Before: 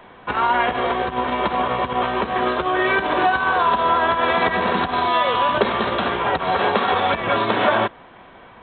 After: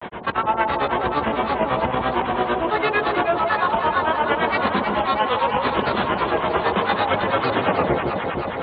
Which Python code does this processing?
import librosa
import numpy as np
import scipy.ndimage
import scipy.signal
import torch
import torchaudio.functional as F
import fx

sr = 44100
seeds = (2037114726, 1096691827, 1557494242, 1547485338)

y = fx.tape_stop_end(x, sr, length_s=1.17)
y = scipy.signal.sosfilt(scipy.signal.butter(2, 60.0, 'highpass', fs=sr, output='sos'), y)
y = fx.low_shelf(y, sr, hz=110.0, db=5.0)
y = fx.granulator(y, sr, seeds[0], grain_ms=100.0, per_s=8.9, spray_ms=20.0, spread_st=3)
y = fx.air_absorb(y, sr, metres=60.0)
y = fx.echo_alternate(y, sr, ms=158, hz=910.0, feedback_pct=78, wet_db=-8)
y = fx.env_flatten(y, sr, amount_pct=50)